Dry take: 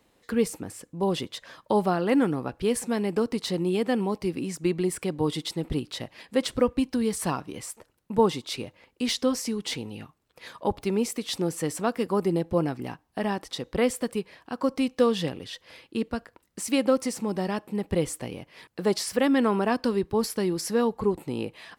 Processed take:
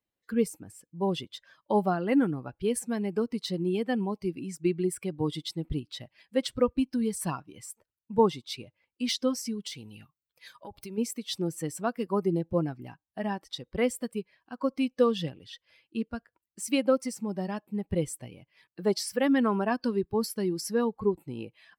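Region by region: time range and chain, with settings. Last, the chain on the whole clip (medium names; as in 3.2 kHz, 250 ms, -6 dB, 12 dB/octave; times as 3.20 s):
9.66–10.98 s: treble shelf 3.5 kHz +7.5 dB + compression 10:1, threshold -29 dBFS
whole clip: expander on every frequency bin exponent 1.5; band-stop 6.8 kHz, Q 13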